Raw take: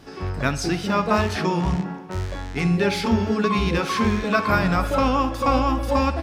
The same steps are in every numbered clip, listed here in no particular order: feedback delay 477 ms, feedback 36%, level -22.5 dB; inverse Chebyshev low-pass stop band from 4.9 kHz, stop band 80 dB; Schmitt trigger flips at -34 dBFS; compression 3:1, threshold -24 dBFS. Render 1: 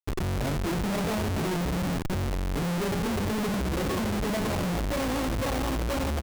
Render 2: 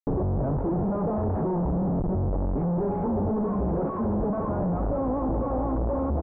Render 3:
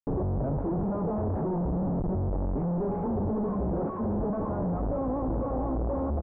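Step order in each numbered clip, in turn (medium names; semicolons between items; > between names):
inverse Chebyshev low-pass > compression > feedback delay > Schmitt trigger; feedback delay > Schmitt trigger > inverse Chebyshev low-pass > compression; feedback delay > compression > Schmitt trigger > inverse Chebyshev low-pass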